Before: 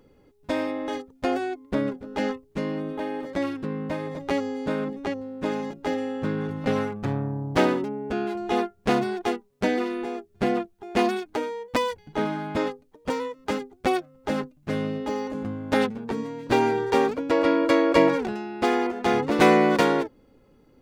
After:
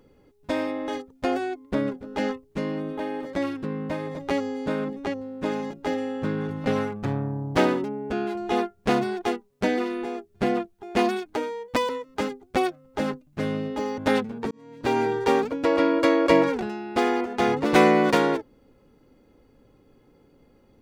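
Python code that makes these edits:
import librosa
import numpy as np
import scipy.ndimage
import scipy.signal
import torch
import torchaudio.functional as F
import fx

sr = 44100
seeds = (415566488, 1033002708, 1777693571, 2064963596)

y = fx.edit(x, sr, fx.cut(start_s=11.89, length_s=1.3),
    fx.cut(start_s=15.28, length_s=0.36),
    fx.fade_in_span(start_s=16.17, length_s=0.56), tone=tone)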